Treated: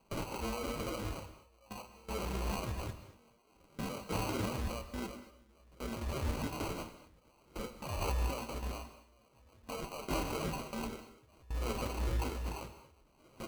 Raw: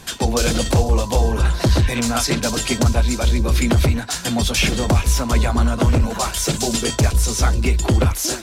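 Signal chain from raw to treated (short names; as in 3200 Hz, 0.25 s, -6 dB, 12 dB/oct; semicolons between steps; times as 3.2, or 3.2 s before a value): limiter -16 dBFS, peak gain reduction 10 dB; three-band isolator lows -14 dB, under 480 Hz, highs -23 dB, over 2800 Hz; negative-ratio compressor -36 dBFS, ratio -1; tremolo triangle 0.83 Hz, depth 70%; plain phase-vocoder stretch 1.6×; sample-and-hold 25×; gate with hold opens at -34 dBFS; bell 730 Hz -6 dB 0.24 oct; non-linear reverb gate 0.26 s flat, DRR 10 dB; gain +3 dB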